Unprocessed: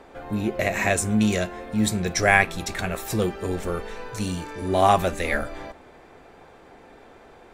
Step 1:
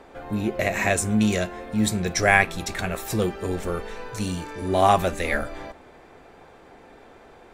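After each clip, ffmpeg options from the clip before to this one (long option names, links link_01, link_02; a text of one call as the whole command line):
ffmpeg -i in.wav -af anull out.wav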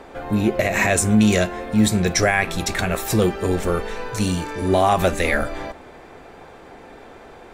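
ffmpeg -i in.wav -af "alimiter=limit=-13.5dB:level=0:latency=1:release=67,volume=6.5dB" out.wav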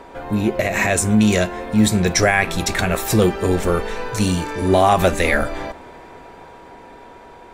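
ffmpeg -i in.wav -af "dynaudnorm=framelen=320:gausssize=11:maxgain=3.5dB,aeval=exprs='val(0)+0.00631*sin(2*PI*960*n/s)':channel_layout=same" out.wav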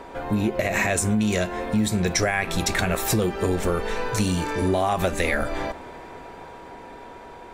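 ffmpeg -i in.wav -af "acompressor=threshold=-19dB:ratio=6" out.wav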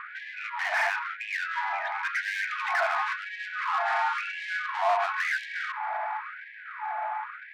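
ffmpeg -i in.wav -filter_complex "[0:a]highpass=frequency=530:width_type=q:width=0.5412,highpass=frequency=530:width_type=q:width=1.307,lowpass=frequency=2500:width_type=q:width=0.5176,lowpass=frequency=2500:width_type=q:width=0.7071,lowpass=frequency=2500:width_type=q:width=1.932,afreqshift=-97,asplit=2[link_01][link_02];[link_02]highpass=frequency=720:poles=1,volume=27dB,asoftclip=type=tanh:threshold=-11dB[link_03];[link_01][link_03]amix=inputs=2:normalize=0,lowpass=frequency=1000:poles=1,volume=-6dB,afftfilt=real='re*gte(b*sr/1024,610*pow(1600/610,0.5+0.5*sin(2*PI*0.96*pts/sr)))':imag='im*gte(b*sr/1024,610*pow(1600/610,0.5+0.5*sin(2*PI*0.96*pts/sr)))':win_size=1024:overlap=0.75,volume=-2.5dB" out.wav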